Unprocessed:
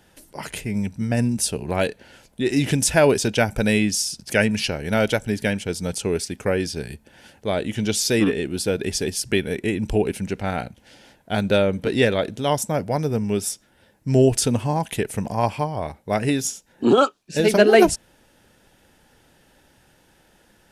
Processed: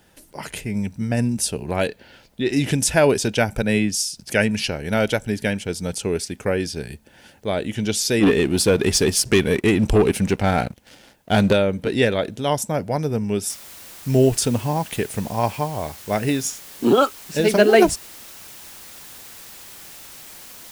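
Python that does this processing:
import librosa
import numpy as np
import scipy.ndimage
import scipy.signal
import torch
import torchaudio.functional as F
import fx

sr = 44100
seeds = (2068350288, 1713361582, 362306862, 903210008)

y = fx.high_shelf_res(x, sr, hz=6000.0, db=-8.0, q=1.5, at=(1.88, 2.53))
y = fx.band_widen(y, sr, depth_pct=70, at=(3.62, 4.17))
y = fx.leveller(y, sr, passes=2, at=(8.23, 11.53))
y = fx.noise_floor_step(y, sr, seeds[0], at_s=13.5, before_db=-69, after_db=-41, tilt_db=0.0)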